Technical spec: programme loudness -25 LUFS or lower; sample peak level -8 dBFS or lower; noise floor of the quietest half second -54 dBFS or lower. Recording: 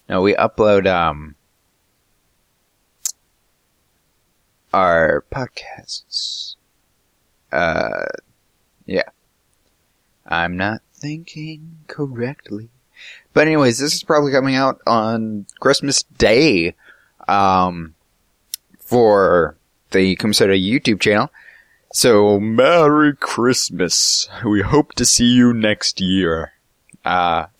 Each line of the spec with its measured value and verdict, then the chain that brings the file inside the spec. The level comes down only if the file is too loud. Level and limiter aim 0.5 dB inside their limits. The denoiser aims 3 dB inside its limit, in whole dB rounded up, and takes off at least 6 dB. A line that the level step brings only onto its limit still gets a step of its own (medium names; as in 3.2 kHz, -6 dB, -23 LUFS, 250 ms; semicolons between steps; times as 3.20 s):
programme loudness -16.0 LUFS: fail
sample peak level -2.5 dBFS: fail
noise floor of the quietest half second -64 dBFS: pass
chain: trim -9.5 dB